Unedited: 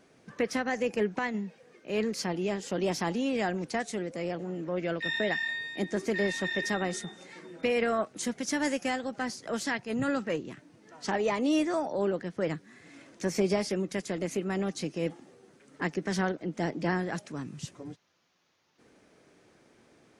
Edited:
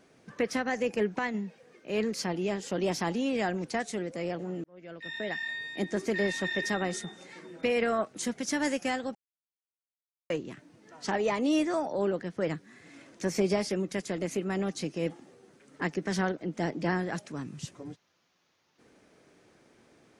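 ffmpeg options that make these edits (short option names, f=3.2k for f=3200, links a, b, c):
-filter_complex "[0:a]asplit=4[a][b][c][d];[a]atrim=end=4.64,asetpts=PTS-STARTPTS,afade=t=out:st=4.636:d=0.004:c=hsin[e];[b]atrim=start=4.64:end=9.15,asetpts=PTS-STARTPTS,afade=t=in:d=1.16,afade=t=out:st=4.506:d=0.004:c=hsin[f];[c]atrim=start=9.15:end=10.3,asetpts=PTS-STARTPTS,volume=0[g];[d]atrim=start=10.3,asetpts=PTS-STARTPTS,afade=t=in:d=0.004:c=hsin[h];[e][f][g][h]concat=n=4:v=0:a=1"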